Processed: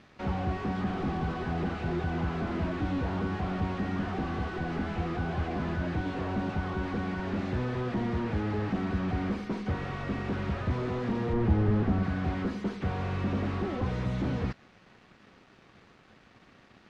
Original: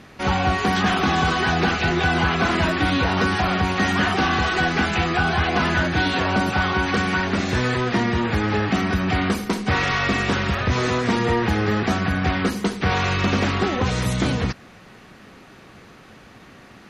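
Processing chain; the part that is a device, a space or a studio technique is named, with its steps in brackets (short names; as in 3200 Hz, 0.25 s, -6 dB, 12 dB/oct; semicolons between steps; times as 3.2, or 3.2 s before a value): early transistor amplifier (crossover distortion -51 dBFS; slew limiter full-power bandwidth 38 Hz); LPF 5100 Hz 12 dB/oct; 11.33–12.03 tilt -2 dB/oct; gain -7.5 dB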